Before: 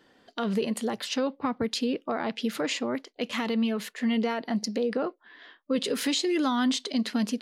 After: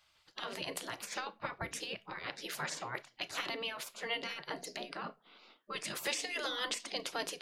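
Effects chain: on a send at -13 dB: reverb RT60 0.25 s, pre-delay 4 ms; on the sum: spectral gate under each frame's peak -15 dB weak

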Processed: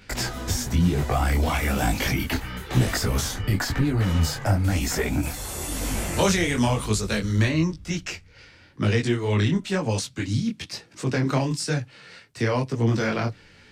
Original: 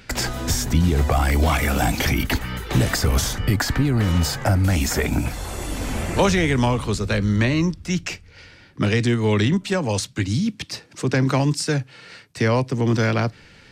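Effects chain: 5.23–7.49 high shelf 5500 Hz +12 dB; detuned doubles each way 35 cents

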